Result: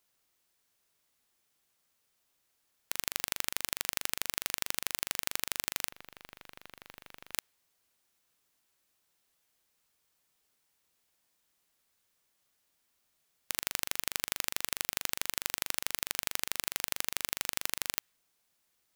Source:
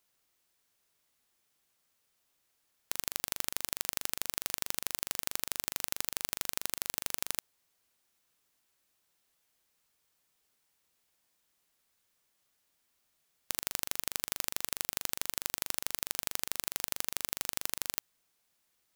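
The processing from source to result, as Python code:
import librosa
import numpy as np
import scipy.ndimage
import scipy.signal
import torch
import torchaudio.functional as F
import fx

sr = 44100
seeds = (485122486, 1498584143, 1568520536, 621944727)

y = fx.dynamic_eq(x, sr, hz=2200.0, q=0.76, threshold_db=-57.0, ratio=4.0, max_db=5)
y = fx.tube_stage(y, sr, drive_db=31.0, bias=0.45, at=(5.91, 7.33))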